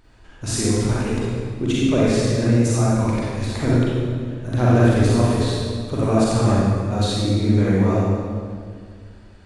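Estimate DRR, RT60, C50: -7.5 dB, 2.0 s, -5.0 dB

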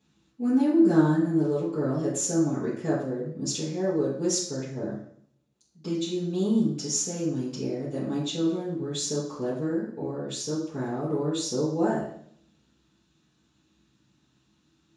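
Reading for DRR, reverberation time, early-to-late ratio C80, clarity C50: -13.0 dB, 0.60 s, 7.5 dB, 3.5 dB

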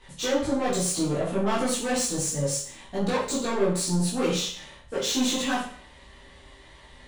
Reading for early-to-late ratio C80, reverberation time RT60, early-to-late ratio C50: 8.5 dB, 0.50 s, 5.0 dB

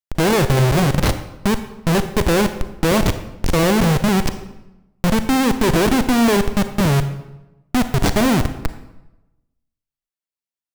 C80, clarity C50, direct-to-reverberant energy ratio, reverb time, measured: 13.0 dB, 11.0 dB, 9.5 dB, 0.95 s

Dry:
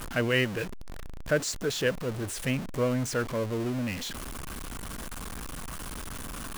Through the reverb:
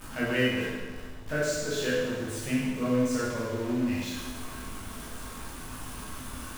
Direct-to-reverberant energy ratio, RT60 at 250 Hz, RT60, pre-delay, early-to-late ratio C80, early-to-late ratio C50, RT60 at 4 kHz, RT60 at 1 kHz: -8.5 dB, 1.4 s, 1.4 s, 12 ms, 1.5 dB, -1.5 dB, 1.3 s, 1.4 s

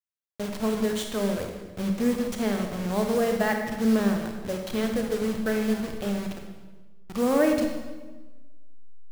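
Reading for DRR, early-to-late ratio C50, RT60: 3.0 dB, 4.5 dB, 1.3 s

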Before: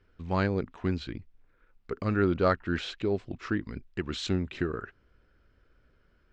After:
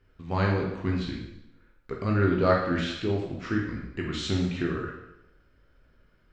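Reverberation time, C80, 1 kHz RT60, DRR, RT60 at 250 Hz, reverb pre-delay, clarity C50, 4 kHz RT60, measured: 0.85 s, 6.0 dB, 0.80 s, -1.5 dB, 0.90 s, 6 ms, 3.0 dB, 0.80 s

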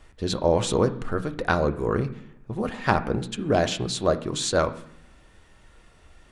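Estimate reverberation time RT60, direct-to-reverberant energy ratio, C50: 0.70 s, 7.0 dB, 14.5 dB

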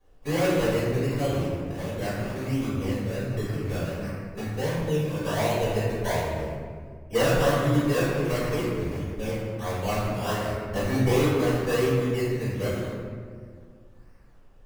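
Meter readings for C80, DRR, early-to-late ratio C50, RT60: 0.5 dB, -15.5 dB, -2.0 dB, 1.9 s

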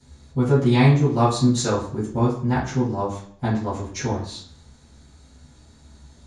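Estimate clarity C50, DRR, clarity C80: 4.5 dB, -14.5 dB, 9.5 dB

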